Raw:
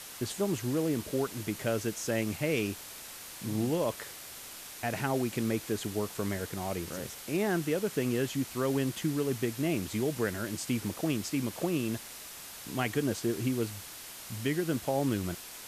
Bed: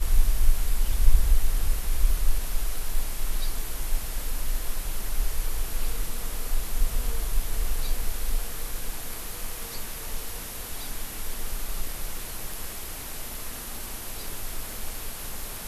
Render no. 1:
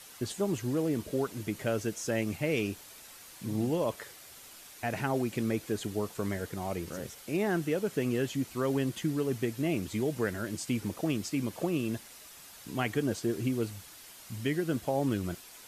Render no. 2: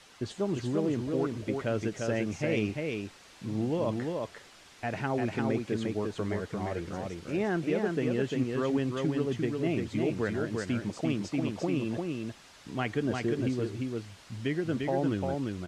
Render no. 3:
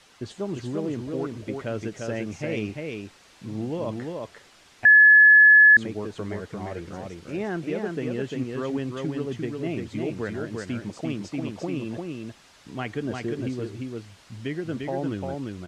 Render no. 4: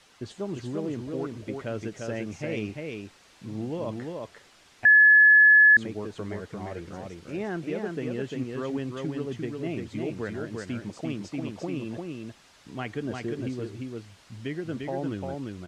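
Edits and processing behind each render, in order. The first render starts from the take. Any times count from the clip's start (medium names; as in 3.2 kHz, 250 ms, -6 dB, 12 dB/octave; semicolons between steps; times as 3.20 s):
noise reduction 7 dB, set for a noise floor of -46 dBFS
distance through air 98 m; delay 348 ms -3.5 dB
4.85–5.77 s: bleep 1.71 kHz -9.5 dBFS
trim -2.5 dB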